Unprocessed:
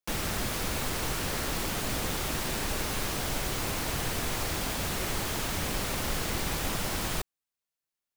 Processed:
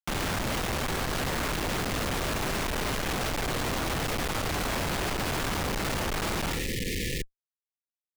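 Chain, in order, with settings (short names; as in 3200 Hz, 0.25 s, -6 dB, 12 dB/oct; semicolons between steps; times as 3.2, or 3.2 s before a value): Schmitt trigger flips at -33 dBFS; spectral repair 6.52–7.38, 540–1700 Hz both; gain +2.5 dB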